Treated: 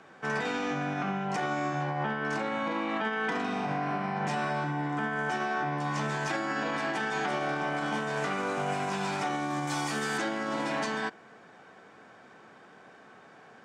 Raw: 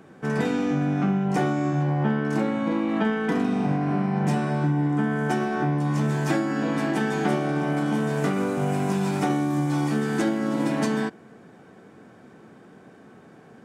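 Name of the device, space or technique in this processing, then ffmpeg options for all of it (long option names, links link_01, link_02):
DJ mixer with the lows and highs turned down: -filter_complex "[0:a]asettb=1/sr,asplit=3[link_01][link_02][link_03];[link_01]atrim=end=9.674[link_04];[link_02]atrim=start=9.67:end=10.18,asetpts=PTS-STARTPTS,afade=type=in:duration=0.004:curve=qsin,afade=type=out:start_time=0.506:duration=0.004:curve=qsin,aemphasis=mode=production:type=50fm[link_05];[link_03]atrim=start=10.176[link_06];[link_04][link_05]acrossfade=duration=0.004:curve1=hsin:curve2=qsin[link_07];[link_07][link_06]acrossfade=duration=0.004:curve1=qsin:curve2=hsin,acrossover=split=600 7700:gain=0.2 1 0.0891[link_08][link_09][link_10];[link_08][link_09][link_10]amix=inputs=3:normalize=0,alimiter=level_in=0.5dB:limit=-24dB:level=0:latency=1:release=48,volume=-0.5dB,volume=2.5dB"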